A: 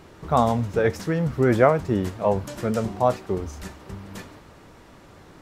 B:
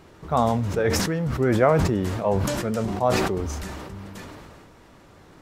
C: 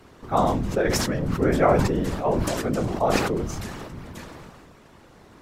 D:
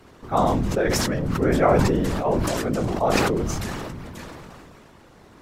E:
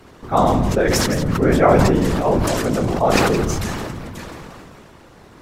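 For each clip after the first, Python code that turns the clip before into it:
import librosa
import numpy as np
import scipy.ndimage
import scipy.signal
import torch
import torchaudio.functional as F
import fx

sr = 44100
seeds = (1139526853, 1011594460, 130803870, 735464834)

y1 = fx.sustainer(x, sr, db_per_s=24.0)
y1 = y1 * 10.0 ** (-2.5 / 20.0)
y2 = fx.whisperise(y1, sr, seeds[0])
y3 = fx.sustainer(y2, sr, db_per_s=20.0)
y4 = y3 + 10.0 ** (-11.0 / 20.0) * np.pad(y3, (int(167 * sr / 1000.0), 0))[:len(y3)]
y4 = y4 * 10.0 ** (4.5 / 20.0)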